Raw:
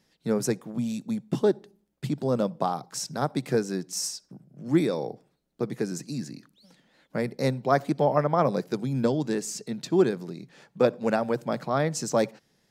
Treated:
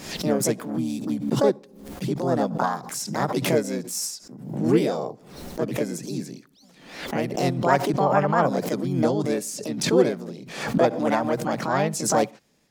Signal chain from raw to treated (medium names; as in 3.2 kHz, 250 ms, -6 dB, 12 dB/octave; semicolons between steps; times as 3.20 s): harmony voices +5 st -2 dB; swell ahead of each attack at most 73 dB/s